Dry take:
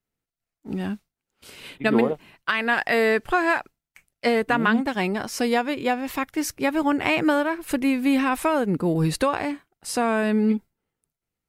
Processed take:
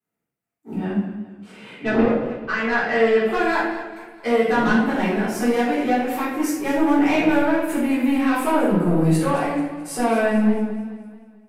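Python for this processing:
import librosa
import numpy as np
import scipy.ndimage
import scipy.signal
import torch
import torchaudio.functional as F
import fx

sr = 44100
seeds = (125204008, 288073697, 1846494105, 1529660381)

y = scipy.signal.sosfilt(scipy.signal.butter(2, 150.0, 'highpass', fs=sr, output='sos'), x)
y = fx.peak_eq(y, sr, hz=4500.0, db=-9.0, octaves=1.2)
y = 10.0 ** (-18.5 / 20.0) * np.tanh(y / 10.0 ** (-18.5 / 20.0))
y = fx.air_absorb(y, sr, metres=83.0, at=(0.77, 3.19))
y = fx.room_shoebox(y, sr, seeds[0], volume_m3=260.0, walls='mixed', distance_m=3.7)
y = fx.echo_warbled(y, sr, ms=216, feedback_pct=46, rate_hz=2.8, cents=72, wet_db=-14)
y = y * librosa.db_to_amplitude(-6.0)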